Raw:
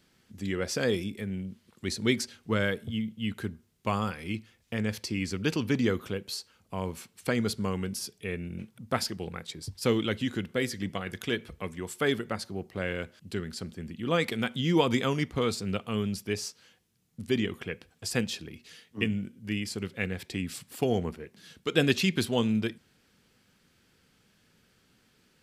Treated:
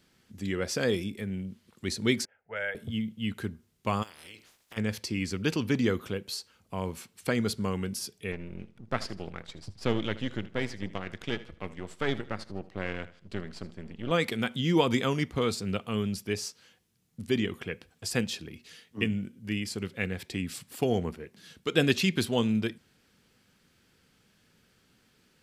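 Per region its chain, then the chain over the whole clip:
2.25–2.75 s: three-band isolator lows -20 dB, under 530 Hz, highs -13 dB, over 3.8 kHz + static phaser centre 1.1 kHz, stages 6 + level-controlled noise filter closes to 930 Hz, open at -30.5 dBFS
4.02–4.76 s: spectral peaks clipped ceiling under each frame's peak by 26 dB + compression 4:1, threshold -47 dBFS + modulation noise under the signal 31 dB
8.32–14.11 s: partial rectifier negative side -12 dB + distance through air 79 m + feedback delay 78 ms, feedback 34%, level -17 dB
whole clip: none

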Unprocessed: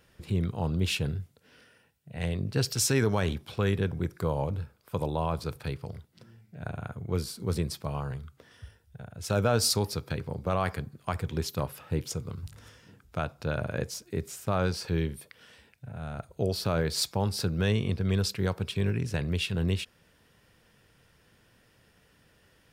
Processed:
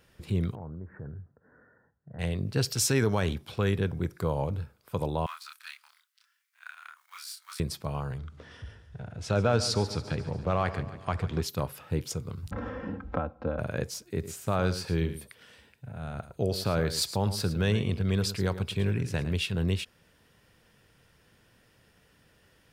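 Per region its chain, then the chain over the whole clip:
0.55–2.19 s: steep low-pass 1.8 kHz 96 dB/octave + compression 4:1, threshold -39 dBFS
5.26–7.60 s: companding laws mixed up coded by A + steep high-pass 1.2 kHz + doubling 27 ms -2.5 dB
8.18–11.43 s: companding laws mixed up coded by mu + distance through air 84 m + feedback delay 142 ms, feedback 54%, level -14 dB
12.51–13.59 s: low-pass 1.1 kHz + comb 3.8 ms, depth 94% + three bands compressed up and down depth 100%
14.12–19.38 s: band-stop 5.5 kHz, Q 21 + delay 109 ms -12.5 dB
whole clip: none

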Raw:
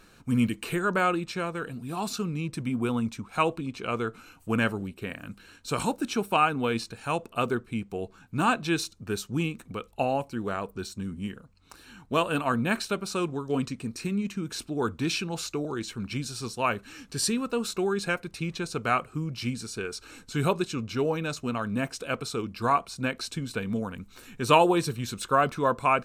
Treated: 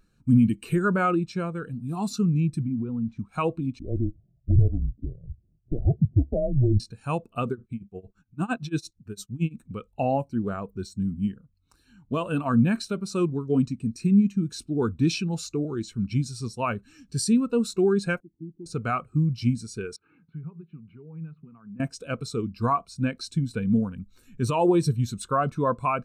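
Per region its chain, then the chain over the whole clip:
2.62–3.19 s: zero-crossing glitches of -28.5 dBFS + compression 10:1, threshold -28 dBFS + tape spacing loss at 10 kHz 34 dB
3.79–6.80 s: de-esser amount 90% + Chebyshev low-pass 820 Hz, order 6 + frequency shift -130 Hz
7.51–9.60 s: transient shaper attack -6 dB, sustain +3 dB + tremolo 8.8 Hz, depth 93%
18.20–18.66 s: cascade formant filter u + peaking EQ 1.6 kHz -4.5 dB 1.1 oct
19.96–21.80 s: compression 5:1, threshold -41 dBFS + cabinet simulation 140–2400 Hz, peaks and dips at 160 Hz +9 dB, 250 Hz -4 dB, 580 Hz -10 dB, 1.7 kHz -3 dB
whole clip: tone controls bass +6 dB, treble +6 dB; loudness maximiser +14.5 dB; spectral contrast expander 1.5:1; trim -8.5 dB

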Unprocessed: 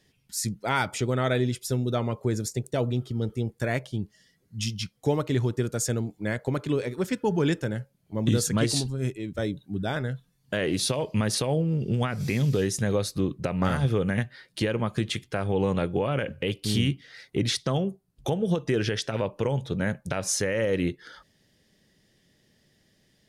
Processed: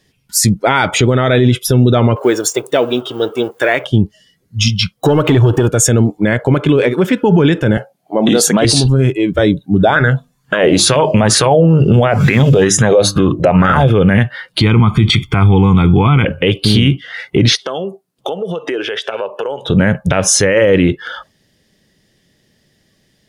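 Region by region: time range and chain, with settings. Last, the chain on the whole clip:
2.16–3.85 s: companding laws mixed up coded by mu + high-pass 490 Hz 6 dB/octave
4.94–5.69 s: treble shelf 8.6 kHz +5 dB + compression 16:1, threshold -31 dBFS + waveshaping leveller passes 2
7.77–8.65 s: high-pass 240 Hz + peaking EQ 720 Hz +12 dB 0.45 oct
9.79–13.90 s: peaking EQ 7.1 kHz +6.5 dB 0.25 oct + hum notches 50/100/150/200/250/300/350 Hz + sweeping bell 2.2 Hz 560–1600 Hz +13 dB
14.61–16.25 s: bass shelf 110 Hz +6.5 dB + comb 0.9 ms, depth 98%
17.55–19.70 s: high-pass 270 Hz + compression, threshold -37 dBFS
whole clip: spectral noise reduction 14 dB; loudness maximiser +22.5 dB; trim -1 dB

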